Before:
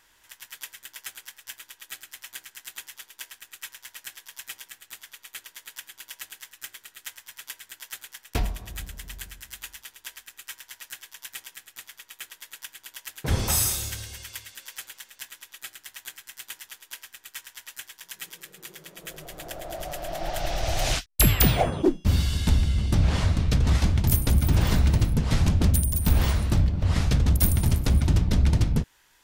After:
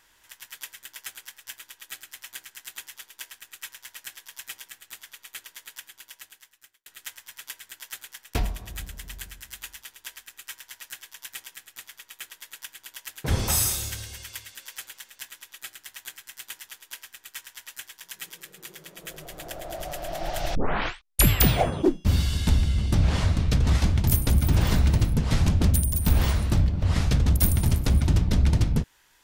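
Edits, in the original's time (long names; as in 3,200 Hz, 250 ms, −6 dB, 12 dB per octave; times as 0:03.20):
0:05.59–0:06.86: fade out
0:20.55: tape start 0.72 s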